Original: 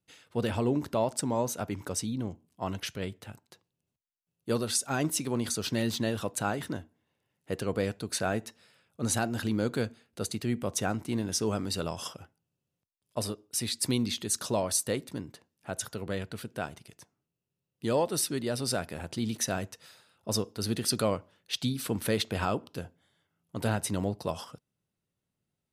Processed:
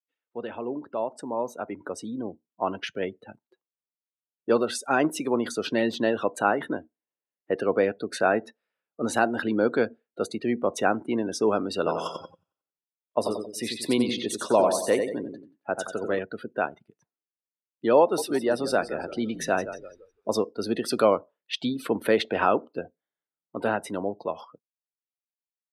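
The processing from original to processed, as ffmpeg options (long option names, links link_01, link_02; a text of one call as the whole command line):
ffmpeg -i in.wav -filter_complex "[0:a]asettb=1/sr,asplit=3[link_01][link_02][link_03];[link_01]atrim=end=11.774[link_04];[link_02]atrim=start=11.77:end=16.19,asetpts=PTS-STARTPTS,afade=type=in:duration=0.004:curve=qsin,afade=type=out:start_time=4.416:duration=0.004:curve=qsin,aecho=1:1:90|180|270|360|450|540:0.531|0.25|0.117|0.0551|0.0259|0.0122,atrim=end_sample=194922[link_05];[link_03]atrim=start=16.186[link_06];[link_04][link_05]acrossfade=duration=0.004:curve1=hsin:curve2=qsin[link_07];[link_07][link_06]acrossfade=duration=0.004:curve1=qsin:curve2=hsin,asettb=1/sr,asplit=3[link_08][link_09][link_10];[link_08]atrim=end=18.014[link_11];[link_09]atrim=start=18.01:end=20.29,asetpts=PTS-STARTPTS,afade=type=in:duration=0.004:curve=qsin,afade=type=out:start_time=2.276:duration=0.004:curve=qsin,asplit=6[link_12][link_13][link_14][link_15][link_16][link_17];[link_13]adelay=166,afreqshift=-60,volume=-11dB[link_18];[link_14]adelay=332,afreqshift=-120,volume=-17dB[link_19];[link_15]adelay=498,afreqshift=-180,volume=-23dB[link_20];[link_16]adelay=664,afreqshift=-240,volume=-29.1dB[link_21];[link_17]adelay=830,afreqshift=-300,volume=-35.1dB[link_22];[link_12][link_18][link_19][link_20][link_21][link_22]amix=inputs=6:normalize=0,atrim=end_sample=100548[link_23];[link_10]atrim=start=20.286[link_24];[link_11][link_23]acrossfade=duration=0.004:curve1=hsin:curve2=qsin[link_25];[link_25][link_24]acrossfade=duration=0.004:curve1=qsin:curve2=hsin,afftdn=noise_reduction=28:noise_floor=-43,acrossover=split=250 2800:gain=0.0708 1 0.158[link_26][link_27][link_28];[link_26][link_27][link_28]amix=inputs=3:normalize=0,dynaudnorm=framelen=190:gausssize=21:maxgain=12dB,volume=-2dB" out.wav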